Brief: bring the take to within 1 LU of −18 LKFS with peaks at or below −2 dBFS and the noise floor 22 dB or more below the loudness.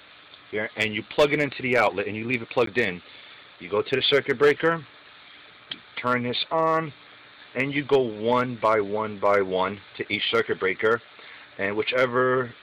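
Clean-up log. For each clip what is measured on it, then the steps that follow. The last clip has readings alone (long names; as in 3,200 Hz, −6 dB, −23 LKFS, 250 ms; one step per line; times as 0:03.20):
share of clipped samples 0.3%; peaks flattened at −11.5 dBFS; number of dropouts 1; longest dropout 13 ms; integrated loudness −24.0 LKFS; sample peak −11.5 dBFS; target loudness −18.0 LKFS
→ clipped peaks rebuilt −11.5 dBFS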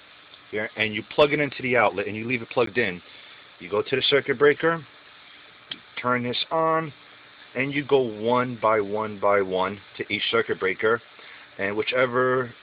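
share of clipped samples 0.0%; number of dropouts 1; longest dropout 13 ms
→ repair the gap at 0:02.66, 13 ms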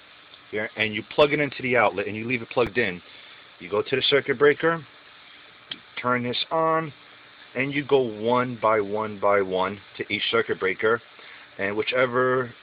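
number of dropouts 0; integrated loudness −23.5 LKFS; sample peak −2.5 dBFS; target loudness −18.0 LKFS
→ level +5.5 dB
brickwall limiter −2 dBFS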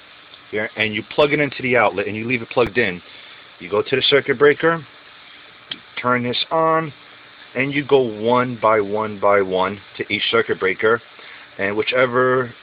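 integrated loudness −18.5 LKFS; sample peak −2.0 dBFS; background noise floor −45 dBFS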